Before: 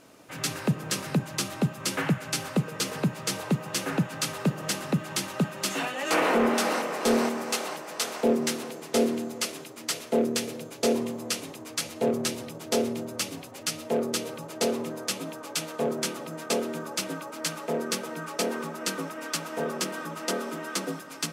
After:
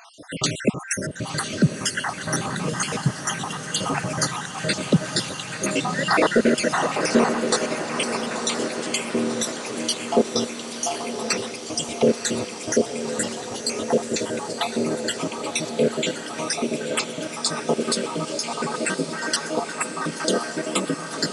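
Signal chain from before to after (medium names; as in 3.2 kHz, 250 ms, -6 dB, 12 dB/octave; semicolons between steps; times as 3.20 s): random holes in the spectrogram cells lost 68%; in parallel at +2 dB: compression, threshold -40 dBFS, peak gain reduction 18.5 dB; on the sum: echo that smears into a reverb 1021 ms, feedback 60%, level -8 dB; resampled via 22.05 kHz; trim +6.5 dB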